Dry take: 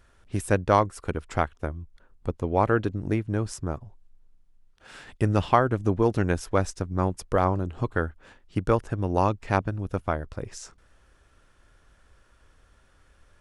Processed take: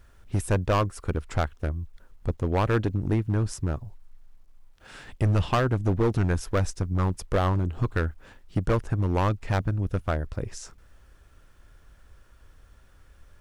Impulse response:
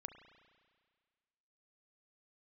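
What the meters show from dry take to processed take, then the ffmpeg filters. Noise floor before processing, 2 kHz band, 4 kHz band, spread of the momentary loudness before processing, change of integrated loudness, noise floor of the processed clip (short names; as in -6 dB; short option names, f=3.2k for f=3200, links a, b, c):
-60 dBFS, -1.5 dB, +2.5 dB, 13 LU, -0.5 dB, -55 dBFS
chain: -af "lowshelf=f=160:g=7,volume=17.5dB,asoftclip=hard,volume=-17.5dB,acrusher=bits=11:mix=0:aa=0.000001"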